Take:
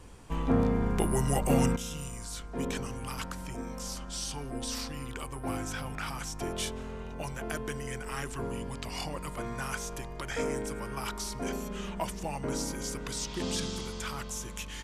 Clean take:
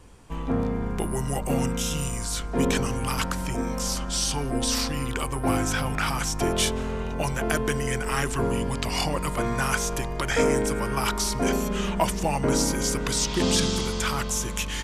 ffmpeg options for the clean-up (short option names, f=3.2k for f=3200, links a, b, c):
-af "asetnsamples=n=441:p=0,asendcmd='1.76 volume volume 10.5dB',volume=0dB"